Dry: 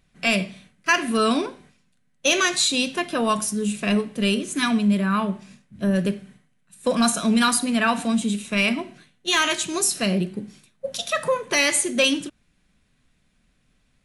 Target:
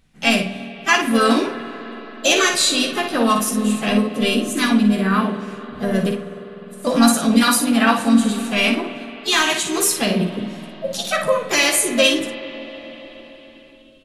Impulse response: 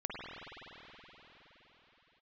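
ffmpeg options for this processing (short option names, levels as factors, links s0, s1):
-filter_complex "[0:a]aecho=1:1:13|57:0.501|0.473,asplit=2[s0][s1];[1:a]atrim=start_sample=2205,lowshelf=f=390:g=4.5[s2];[s1][s2]afir=irnorm=-1:irlink=0,volume=0.224[s3];[s0][s3]amix=inputs=2:normalize=0,asplit=2[s4][s5];[s5]asetrate=52444,aresample=44100,atempo=0.840896,volume=0.447[s6];[s4][s6]amix=inputs=2:normalize=0"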